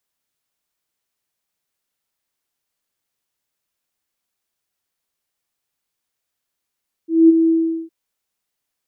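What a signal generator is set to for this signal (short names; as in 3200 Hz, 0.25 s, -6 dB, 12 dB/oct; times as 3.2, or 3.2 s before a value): ADSR sine 327 Hz, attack 0.211 s, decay 22 ms, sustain -7 dB, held 0.41 s, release 0.402 s -4.5 dBFS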